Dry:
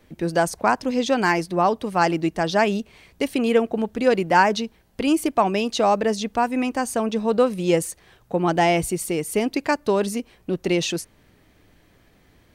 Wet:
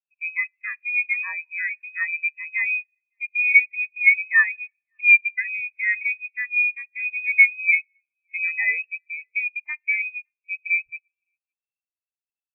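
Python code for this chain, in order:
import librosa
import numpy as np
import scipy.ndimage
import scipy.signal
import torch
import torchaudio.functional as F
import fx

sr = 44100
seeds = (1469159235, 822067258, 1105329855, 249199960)

y = fx.dead_time(x, sr, dead_ms=0.089)
y = fx.low_shelf(y, sr, hz=190.0, db=8.0)
y = y + 10.0 ** (-22.5 / 20.0) * np.pad(y, (int(562 * sr / 1000.0), 0))[:len(y)]
y = fx.rev_schroeder(y, sr, rt60_s=1.5, comb_ms=28, drr_db=17.0)
y = fx.freq_invert(y, sr, carrier_hz=2700)
y = fx.spectral_expand(y, sr, expansion=2.5)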